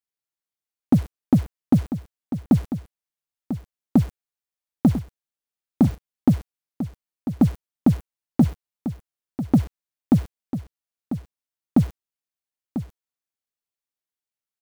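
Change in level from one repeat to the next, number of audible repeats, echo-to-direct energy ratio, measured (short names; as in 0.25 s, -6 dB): no steady repeat, 1, -11.0 dB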